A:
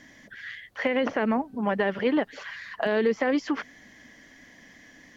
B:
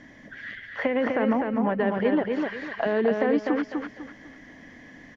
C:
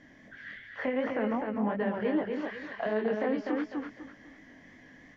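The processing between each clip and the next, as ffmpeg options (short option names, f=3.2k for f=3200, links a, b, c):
-filter_complex "[0:a]lowpass=f=1.4k:p=1,acompressor=threshold=-34dB:ratio=1.5,asplit=2[a][b];[b]aecho=0:1:250|500|750|1000:0.631|0.183|0.0531|0.0154[c];[a][c]amix=inputs=2:normalize=0,volume=5.5dB"
-af "flanger=delay=18.5:depth=5.7:speed=2.7,volume=-3.5dB"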